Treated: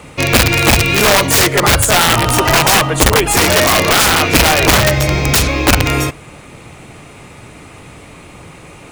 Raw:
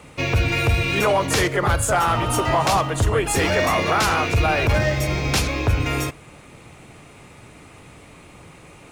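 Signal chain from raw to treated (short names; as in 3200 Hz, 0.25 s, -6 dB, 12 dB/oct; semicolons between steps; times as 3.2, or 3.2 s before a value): 1.2–1.86 high shelf 3500 Hz +2.5 dB; wrapped overs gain 12.5 dB; gain +8.5 dB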